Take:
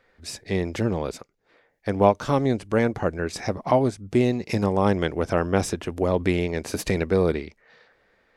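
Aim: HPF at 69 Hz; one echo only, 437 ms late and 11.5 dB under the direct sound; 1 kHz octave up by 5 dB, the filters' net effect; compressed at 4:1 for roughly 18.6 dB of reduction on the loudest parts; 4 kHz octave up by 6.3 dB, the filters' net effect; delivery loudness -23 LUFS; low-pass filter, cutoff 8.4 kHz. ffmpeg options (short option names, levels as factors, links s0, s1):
-af "highpass=69,lowpass=8400,equalizer=f=1000:t=o:g=6,equalizer=f=4000:t=o:g=8,acompressor=threshold=0.0251:ratio=4,aecho=1:1:437:0.266,volume=4.22"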